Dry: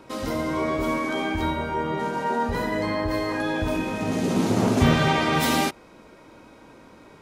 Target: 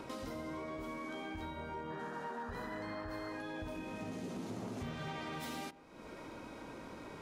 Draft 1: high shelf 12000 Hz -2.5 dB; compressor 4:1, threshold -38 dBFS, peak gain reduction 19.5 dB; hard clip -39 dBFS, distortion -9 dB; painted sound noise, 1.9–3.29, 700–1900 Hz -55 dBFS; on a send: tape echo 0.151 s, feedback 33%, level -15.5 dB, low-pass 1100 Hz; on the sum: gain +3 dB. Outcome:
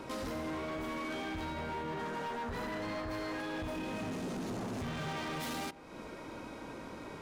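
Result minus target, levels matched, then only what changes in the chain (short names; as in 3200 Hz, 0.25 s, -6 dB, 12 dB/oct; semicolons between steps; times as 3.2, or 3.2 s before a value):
compressor: peak gain reduction -8 dB
change: compressor 4:1, threshold -48.5 dBFS, peak gain reduction 27.5 dB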